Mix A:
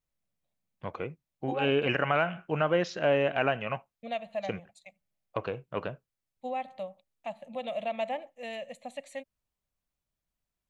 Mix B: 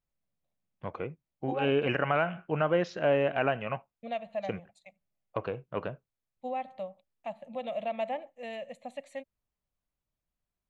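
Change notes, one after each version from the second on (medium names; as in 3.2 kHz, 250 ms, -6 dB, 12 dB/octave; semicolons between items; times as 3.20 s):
master: add treble shelf 3 kHz -8 dB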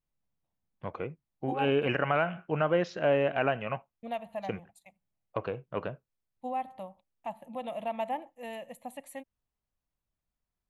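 second voice: remove cabinet simulation 110–7200 Hz, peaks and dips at 320 Hz -7 dB, 580 Hz +7 dB, 930 Hz -9 dB, 2.3 kHz +4 dB, 4 kHz +5 dB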